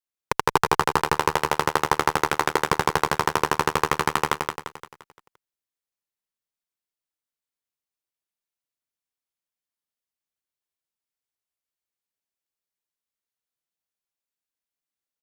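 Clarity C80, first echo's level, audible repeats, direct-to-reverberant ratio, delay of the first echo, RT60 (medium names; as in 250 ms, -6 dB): no reverb, -4.0 dB, 5, no reverb, 173 ms, no reverb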